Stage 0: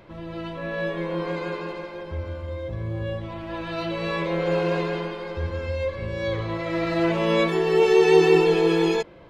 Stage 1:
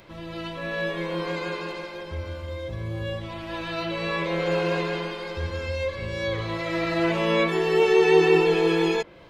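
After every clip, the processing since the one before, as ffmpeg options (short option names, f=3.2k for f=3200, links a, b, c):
-filter_complex "[0:a]highshelf=f=2.4k:g=12,acrossover=split=2800[a][b];[b]acompressor=threshold=-39dB:ratio=6[c];[a][c]amix=inputs=2:normalize=0,volume=-2dB"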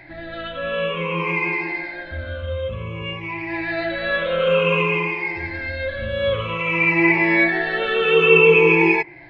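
-af "afftfilt=real='re*pow(10,20/40*sin(2*PI*(0.77*log(max(b,1)*sr/1024/100)/log(2)-(-0.54)*(pts-256)/sr)))':imag='im*pow(10,20/40*sin(2*PI*(0.77*log(max(b,1)*sr/1024/100)/log(2)-(-0.54)*(pts-256)/sr)))':win_size=1024:overlap=0.75,lowpass=f=2.4k:t=q:w=3.4,volume=-1dB"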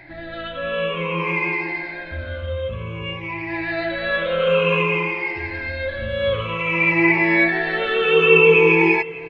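-af "aecho=1:1:595:0.1"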